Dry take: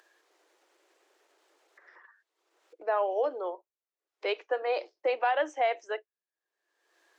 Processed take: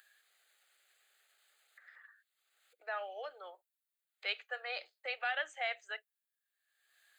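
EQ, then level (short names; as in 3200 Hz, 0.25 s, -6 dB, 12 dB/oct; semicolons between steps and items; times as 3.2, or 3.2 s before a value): ladder high-pass 850 Hz, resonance 40%; resonant high shelf 3500 Hz +8 dB, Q 1.5; fixed phaser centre 2400 Hz, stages 4; +8.0 dB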